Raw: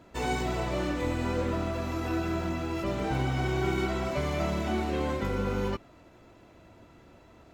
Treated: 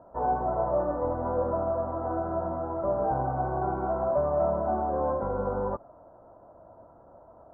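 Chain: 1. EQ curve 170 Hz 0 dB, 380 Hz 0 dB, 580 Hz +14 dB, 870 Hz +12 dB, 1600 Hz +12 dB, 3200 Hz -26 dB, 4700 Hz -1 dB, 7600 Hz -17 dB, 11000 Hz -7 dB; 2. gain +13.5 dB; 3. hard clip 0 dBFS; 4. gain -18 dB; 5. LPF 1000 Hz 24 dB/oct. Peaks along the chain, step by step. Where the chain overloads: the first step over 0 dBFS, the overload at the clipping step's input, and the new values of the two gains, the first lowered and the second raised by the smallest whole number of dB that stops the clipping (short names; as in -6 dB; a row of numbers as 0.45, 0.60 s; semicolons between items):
-9.0, +4.5, 0.0, -18.0, -16.5 dBFS; step 2, 4.5 dB; step 2 +8.5 dB, step 4 -13 dB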